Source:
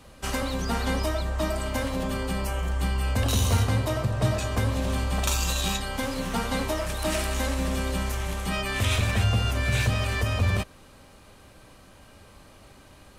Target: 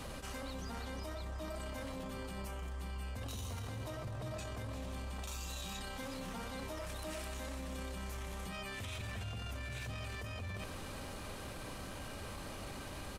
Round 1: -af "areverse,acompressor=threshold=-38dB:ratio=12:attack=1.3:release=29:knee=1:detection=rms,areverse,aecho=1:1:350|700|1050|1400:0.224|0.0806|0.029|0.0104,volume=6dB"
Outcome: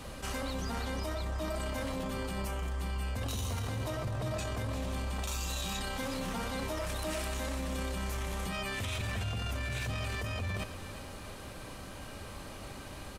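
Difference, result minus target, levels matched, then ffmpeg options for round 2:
downward compressor: peak gain reduction −7.5 dB
-af "areverse,acompressor=threshold=-46dB:ratio=12:attack=1.3:release=29:knee=1:detection=rms,areverse,aecho=1:1:350|700|1050|1400:0.224|0.0806|0.029|0.0104,volume=6dB"

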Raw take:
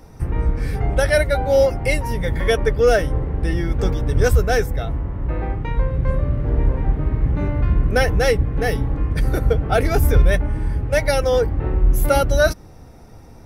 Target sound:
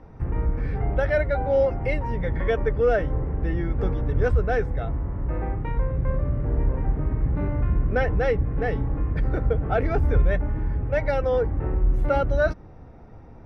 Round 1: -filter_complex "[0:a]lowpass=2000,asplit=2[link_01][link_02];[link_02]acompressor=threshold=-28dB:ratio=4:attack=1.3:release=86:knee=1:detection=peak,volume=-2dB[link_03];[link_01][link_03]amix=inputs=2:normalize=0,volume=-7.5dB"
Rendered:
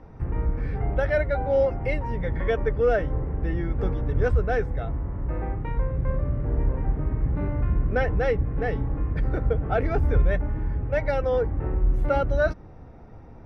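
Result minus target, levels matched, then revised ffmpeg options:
downward compressor: peak gain reduction +5 dB
-filter_complex "[0:a]lowpass=2000,asplit=2[link_01][link_02];[link_02]acompressor=threshold=-21dB:ratio=4:attack=1.3:release=86:knee=1:detection=peak,volume=-2dB[link_03];[link_01][link_03]amix=inputs=2:normalize=0,volume=-7.5dB"

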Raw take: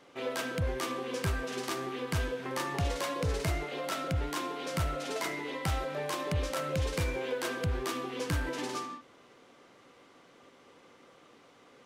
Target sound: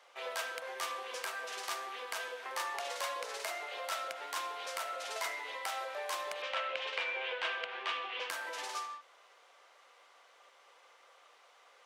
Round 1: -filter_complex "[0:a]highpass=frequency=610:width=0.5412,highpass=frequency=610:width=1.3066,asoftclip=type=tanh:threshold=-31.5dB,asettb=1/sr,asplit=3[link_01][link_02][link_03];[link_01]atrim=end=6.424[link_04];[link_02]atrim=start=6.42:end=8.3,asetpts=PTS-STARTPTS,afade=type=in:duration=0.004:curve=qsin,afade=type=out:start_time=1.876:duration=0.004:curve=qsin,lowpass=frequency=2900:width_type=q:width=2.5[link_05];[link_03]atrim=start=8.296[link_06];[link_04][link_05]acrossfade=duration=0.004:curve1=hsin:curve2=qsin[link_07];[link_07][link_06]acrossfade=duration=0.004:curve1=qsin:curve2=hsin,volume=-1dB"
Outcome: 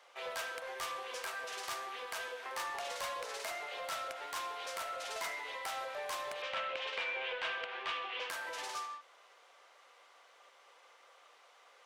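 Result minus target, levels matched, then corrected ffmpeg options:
soft clipping: distortion +12 dB
-filter_complex "[0:a]highpass=frequency=610:width=0.5412,highpass=frequency=610:width=1.3066,asoftclip=type=tanh:threshold=-22dB,asettb=1/sr,asplit=3[link_01][link_02][link_03];[link_01]atrim=end=6.424[link_04];[link_02]atrim=start=6.42:end=8.3,asetpts=PTS-STARTPTS,afade=type=in:duration=0.004:curve=qsin,afade=type=out:start_time=1.876:duration=0.004:curve=qsin,lowpass=frequency=2900:width_type=q:width=2.5[link_05];[link_03]atrim=start=8.296[link_06];[link_04][link_05]acrossfade=duration=0.004:curve1=hsin:curve2=qsin[link_07];[link_07][link_06]acrossfade=duration=0.004:curve1=qsin:curve2=hsin,volume=-1dB"

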